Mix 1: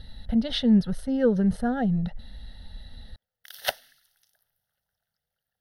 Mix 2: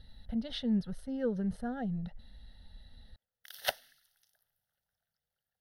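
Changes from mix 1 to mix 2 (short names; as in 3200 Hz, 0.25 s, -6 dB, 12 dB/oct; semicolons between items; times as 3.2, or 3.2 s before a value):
speech -11.0 dB; background -5.0 dB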